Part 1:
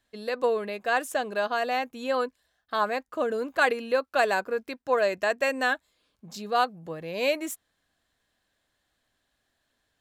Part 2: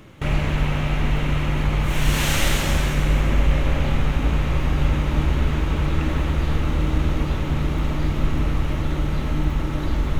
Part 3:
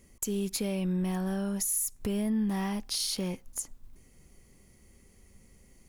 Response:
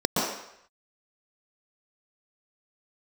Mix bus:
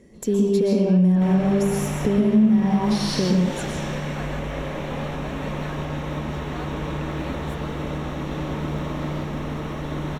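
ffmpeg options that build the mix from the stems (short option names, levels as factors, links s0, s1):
-filter_complex "[0:a]volume=0.126[s0];[1:a]alimiter=limit=0.299:level=0:latency=1:release=394,acrossover=split=450|7100[s1][s2][s3];[s1]acompressor=threshold=0.0447:ratio=4[s4];[s2]acompressor=threshold=0.0282:ratio=4[s5];[s3]acompressor=threshold=0.00178:ratio=4[s6];[s4][s5][s6]amix=inputs=3:normalize=0,adelay=1000,volume=0.531,asplit=2[s7][s8];[s8]volume=0.251[s9];[2:a]aemphasis=mode=reproduction:type=50fm,volume=1.12,asplit=2[s10][s11];[s11]volume=0.562[s12];[3:a]atrim=start_sample=2205[s13];[s9][s12]amix=inputs=2:normalize=0[s14];[s14][s13]afir=irnorm=-1:irlink=0[s15];[s0][s7][s10][s15]amix=inputs=4:normalize=0,acompressor=threshold=0.141:ratio=3"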